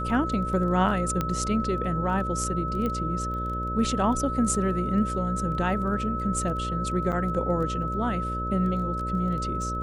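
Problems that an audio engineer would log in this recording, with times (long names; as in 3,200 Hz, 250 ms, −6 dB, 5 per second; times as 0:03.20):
mains buzz 60 Hz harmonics 10 −32 dBFS
surface crackle 10 per second −34 dBFS
whistle 1,300 Hz −30 dBFS
0:01.21: click −13 dBFS
0:02.86: click −18 dBFS
0:07.12–0:07.13: drop-out 7.9 ms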